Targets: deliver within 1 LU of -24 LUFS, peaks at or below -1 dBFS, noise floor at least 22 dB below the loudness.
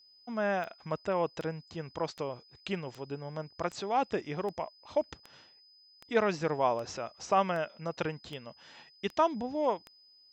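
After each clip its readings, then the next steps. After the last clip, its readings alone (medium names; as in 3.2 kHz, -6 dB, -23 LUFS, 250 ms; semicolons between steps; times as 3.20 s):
clicks found 13; steady tone 5 kHz; tone level -58 dBFS; loudness -33.5 LUFS; peak level -14.0 dBFS; loudness target -24.0 LUFS
-> de-click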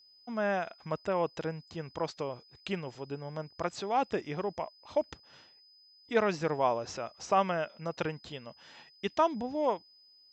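clicks found 0; steady tone 5 kHz; tone level -58 dBFS
-> band-stop 5 kHz, Q 30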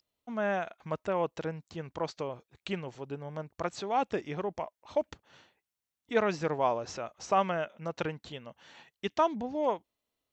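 steady tone not found; loudness -33.5 LUFS; peak level -14.0 dBFS; loudness target -24.0 LUFS
-> trim +9.5 dB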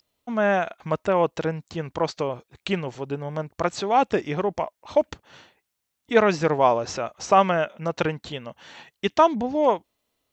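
loudness -24.0 LUFS; peak level -4.5 dBFS; noise floor -80 dBFS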